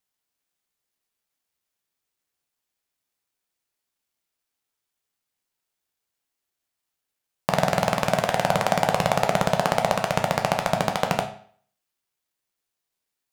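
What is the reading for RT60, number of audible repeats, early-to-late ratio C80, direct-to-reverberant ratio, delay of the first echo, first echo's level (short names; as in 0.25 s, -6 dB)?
0.50 s, none, 13.5 dB, 3.5 dB, none, none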